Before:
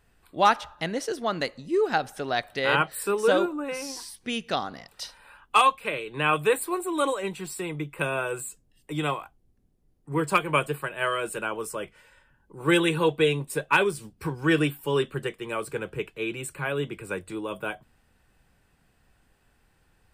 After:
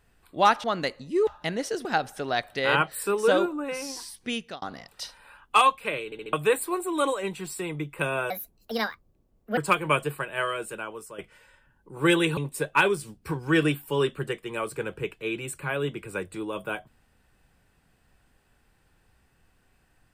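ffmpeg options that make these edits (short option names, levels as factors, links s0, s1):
-filter_complex "[0:a]asplit=13[s0][s1][s2][s3][s4][s5][s6][s7][s8][s9][s10][s11][s12];[s0]atrim=end=0.642[s13];[s1]atrim=start=1.218:end=1.852[s14];[s2]atrim=start=0.638:end=1.222[s15];[s3]atrim=start=1.848:end=4.62,asetpts=PTS-STARTPTS,afade=t=out:st=2.482:d=0.29[s16];[s4]atrim=start=4.62:end=6.122,asetpts=PTS-STARTPTS,afade=t=in:d=0.004:c=hsin[s17];[s5]atrim=start=6.048:end=6.122[s18];[s6]atrim=start=6.048:end=6.122[s19];[s7]atrim=start=6.048:end=6.122[s20];[s8]atrim=start=6.328:end=8.304[s21];[s9]atrim=start=8.3:end=10.21,asetpts=PTS-STARTPTS,asetrate=66150,aresample=44100[s22];[s10]atrim=start=10.206:end=11.82,asetpts=PTS-STARTPTS,afade=t=out:st=0.664:d=0.95:silence=0.281838[s23];[s11]atrim=start=11.82:end=13.012,asetpts=PTS-STARTPTS,afade=t=in:d=0.004:c=hsin:silence=0.281838[s24];[s12]atrim=start=13.328[s25];[s13][s14]acrossfade=d=0.004:c1=hsin:c2=hsin[s26];[s26][s15]acrossfade=d=0.004:c1=hsin:c2=hsin[s27];[s16][s17]concat=n=2:v=0:a=1[s28];[s27][s28]acrossfade=d=0.004:c1=hsin:c2=hsin[s29];[s29][s18]acrossfade=d=0.004:c1=hsin:c2=hsin[s30];[s30][s19]acrossfade=d=0.004:c1=hsin:c2=hsin[s31];[s31][s20]acrossfade=d=0.004:c1=hsin:c2=hsin[s32];[s32][s21]acrossfade=d=0.004:c1=hsin:c2=hsin[s33];[s33][s22]acrossfade=d=0.004:c1=hsin:c2=hsin[s34];[s23][s24]concat=n=2:v=0:a=1[s35];[s34][s35]acrossfade=d=0.004:c1=hsin:c2=hsin[s36];[s36][s25]acrossfade=d=0.004:c1=hsin:c2=hsin"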